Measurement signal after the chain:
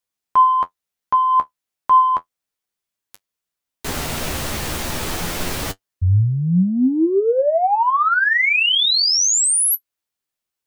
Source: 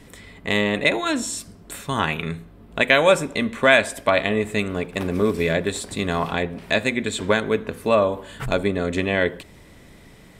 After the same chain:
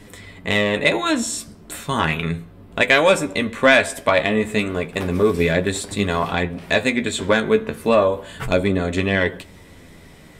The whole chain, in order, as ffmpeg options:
-af "acontrast=21,flanger=delay=9.6:depth=4.2:regen=41:speed=0.33:shape=triangular,volume=1.26"

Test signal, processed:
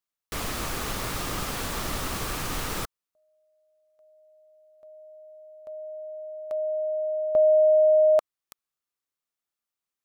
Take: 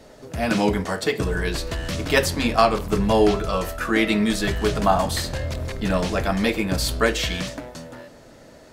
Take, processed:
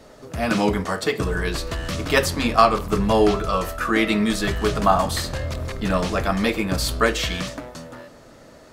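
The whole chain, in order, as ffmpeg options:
-af "equalizer=f=1200:t=o:w=0.28:g=6.5"

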